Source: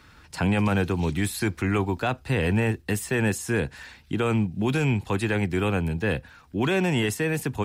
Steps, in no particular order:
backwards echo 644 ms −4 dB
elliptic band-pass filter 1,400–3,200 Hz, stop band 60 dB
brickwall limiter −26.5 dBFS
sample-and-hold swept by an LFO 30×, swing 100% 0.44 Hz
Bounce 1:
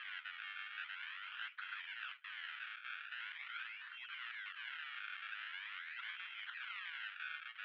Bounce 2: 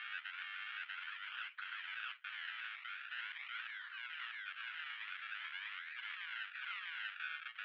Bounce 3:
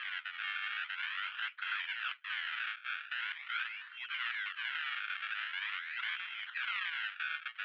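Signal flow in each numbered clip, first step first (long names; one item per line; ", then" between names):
backwards echo, then brickwall limiter, then sample-and-hold swept by an LFO, then elliptic band-pass filter
sample-and-hold swept by an LFO, then backwards echo, then brickwall limiter, then elliptic band-pass filter
backwards echo, then sample-and-hold swept by an LFO, then elliptic band-pass filter, then brickwall limiter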